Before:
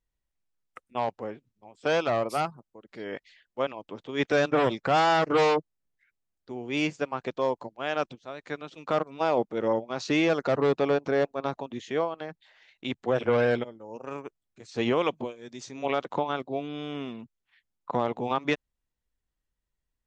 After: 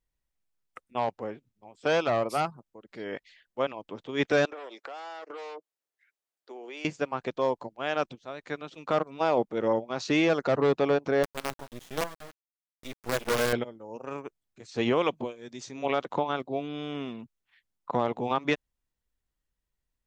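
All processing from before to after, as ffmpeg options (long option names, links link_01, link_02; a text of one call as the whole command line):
ffmpeg -i in.wav -filter_complex "[0:a]asettb=1/sr,asplit=3[link_01][link_02][link_03];[link_01]atrim=end=4.454[link_04];[link_02]atrim=start=4.45:end=6.85,asetpts=PTS-STARTPTS,afade=type=in:duration=0.004:curve=qsin,afade=type=out:start_time=2.396:duration=0.004:curve=qsin,highpass=frequency=370:width=0.5412,highpass=frequency=370:width=1.3066,acompressor=threshold=-38dB:ratio=8:attack=3.2:release=140:knee=1:detection=peak[link_05];[link_03]atrim=start=6.846[link_06];[link_04][link_05]acrossfade=duration=0.004:curve1=hsin:curve2=qsin[link_07];[link_07][link_06]acrossfade=duration=0.004:curve1=qsin:curve2=hsin,asettb=1/sr,asplit=3[link_08][link_09][link_10];[link_08]atrim=end=11.234[link_11];[link_09]atrim=start=11.23:end=13.53,asetpts=PTS-STARTPTS,afade=type=in:duration=0.004:curve=qsin,afade=type=out:start_time=2.296:duration=0.004:curve=qsin,highpass=frequency=130:poles=1,flanger=delay=0.6:depth=8.3:regen=-43:speed=1.1:shape=sinusoidal,acrusher=bits=5:dc=4:mix=0:aa=0.000001[link_12];[link_10]atrim=start=13.526[link_13];[link_11][link_12]acrossfade=duration=0.004:curve1=hsin:curve2=qsin[link_14];[link_14][link_13]acrossfade=duration=0.004:curve1=qsin:curve2=hsin" out.wav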